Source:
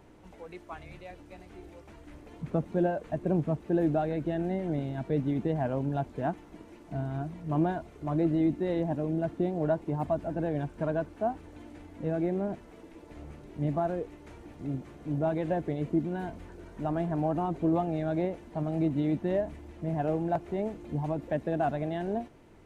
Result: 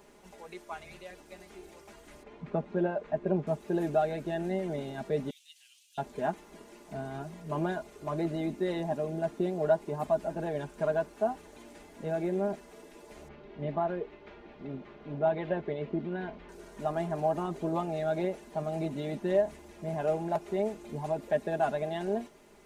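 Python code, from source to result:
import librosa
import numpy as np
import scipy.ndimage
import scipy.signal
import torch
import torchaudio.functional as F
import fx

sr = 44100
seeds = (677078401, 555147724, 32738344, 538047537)

y = fx.lowpass(x, sr, hz=2800.0, slope=12, at=(2.23, 3.47))
y = fx.cheby1_highpass(y, sr, hz=2900.0, order=4, at=(5.3, 5.98))
y = fx.lowpass(y, sr, hz=3600.0, slope=24, at=(13.28, 16.49))
y = fx.bass_treble(y, sr, bass_db=-9, treble_db=8)
y = y + 0.66 * np.pad(y, (int(4.9 * sr / 1000.0), 0))[:len(y)]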